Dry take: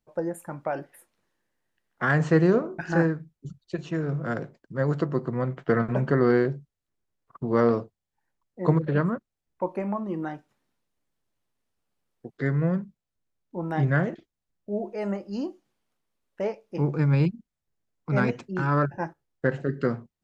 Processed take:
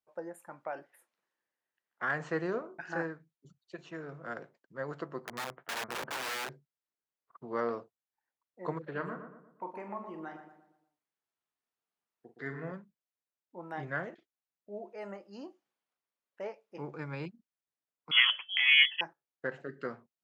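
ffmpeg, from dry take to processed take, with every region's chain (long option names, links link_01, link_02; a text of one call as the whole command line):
ffmpeg -i in.wav -filter_complex "[0:a]asettb=1/sr,asplit=3[link_01][link_02][link_03];[link_01]atrim=end=5.254[link_04];[link_02]atrim=start=5.25:end=6.49,asetpts=PTS-STARTPTS,afade=type=in:duration=0.004:curve=qsin,afade=type=out:start_time=1.236:duration=0.004:curve=qsin,lowpass=1700,aeval=exprs='(mod(13.3*val(0)+1,2)-1)/13.3':channel_layout=same[link_05];[link_03]atrim=start=6.486[link_06];[link_04][link_05]acrossfade=duration=0.004:curve1=hsin:curve2=qsin[link_07];[link_07][link_06]acrossfade=duration=0.004:curve1=qsin:curve2=hsin,asettb=1/sr,asplit=3[link_08][link_09][link_10];[link_08]atrim=end=8.914[link_11];[link_09]atrim=start=8.91:end=12.72,asetpts=PTS-STARTPTS,afade=type=in:duration=0.004:curve=qsin,afade=type=out:start_time=3.806:duration=0.004:curve=qsin,bandreject=frequency=550:width=7.6,asplit=2[link_12][link_13];[link_13]adelay=44,volume=-9dB[link_14];[link_12][link_14]amix=inputs=2:normalize=0,atrim=end_sample=168021,asplit=2[link_15][link_16];[link_16]adelay=118,lowpass=frequency=1800:poles=1,volume=-7dB,asplit=2[link_17][link_18];[link_18]adelay=118,lowpass=frequency=1800:poles=1,volume=0.46,asplit=2[link_19][link_20];[link_20]adelay=118,lowpass=frequency=1800:poles=1,volume=0.46,asplit=2[link_21][link_22];[link_22]adelay=118,lowpass=frequency=1800:poles=1,volume=0.46,asplit=2[link_23][link_24];[link_24]adelay=118,lowpass=frequency=1800:poles=1,volume=0.46[link_25];[link_15][link_17][link_19][link_21][link_23][link_25]amix=inputs=6:normalize=0,atrim=end_sample=168021[link_26];[link_10]atrim=start=12.716[link_27];[link_11][link_26]acrossfade=duration=0.004:curve1=hsin:curve2=qsin[link_28];[link_28][link_27]acrossfade=duration=0.004:curve1=qsin:curve2=hsin,asettb=1/sr,asplit=3[link_29][link_30][link_31];[link_29]atrim=end=18.114[link_32];[link_30]atrim=start=18.11:end=19.01,asetpts=PTS-STARTPTS,afade=type=in:duration=0.004:curve=qsin,afade=type=out:start_time=0.896:duration=0.004:curve=qsin,equalizer=frequency=960:width=0.46:gain=13,bandreject=frequency=414.3:width_type=h:width=4,bandreject=frequency=828.6:width_type=h:width=4,lowpass=frequency=3000:width_type=q:width=0.5098,lowpass=frequency=3000:width_type=q:width=0.6013,lowpass=frequency=3000:width_type=q:width=0.9,lowpass=frequency=3000:width_type=q:width=2.563,afreqshift=-3500[link_33];[link_31]atrim=start=19.006[link_34];[link_32][link_33]acrossfade=duration=0.004:curve1=hsin:curve2=qsin[link_35];[link_35][link_34]acrossfade=duration=0.004:curve1=qsin:curve2=hsin,highpass=frequency=1400:poles=1,highshelf=frequency=2500:gain=-11,volume=-1.5dB" out.wav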